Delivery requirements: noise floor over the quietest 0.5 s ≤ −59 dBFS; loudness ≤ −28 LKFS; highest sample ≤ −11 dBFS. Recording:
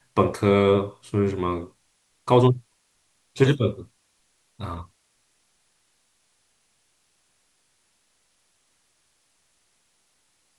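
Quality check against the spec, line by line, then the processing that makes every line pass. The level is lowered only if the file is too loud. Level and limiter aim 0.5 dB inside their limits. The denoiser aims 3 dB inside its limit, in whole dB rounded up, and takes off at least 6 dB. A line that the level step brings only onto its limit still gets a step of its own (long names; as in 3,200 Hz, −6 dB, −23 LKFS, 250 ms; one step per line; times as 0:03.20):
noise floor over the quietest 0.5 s −68 dBFS: in spec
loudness −22.5 LKFS: out of spec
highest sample −3.5 dBFS: out of spec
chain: level −6 dB
brickwall limiter −11.5 dBFS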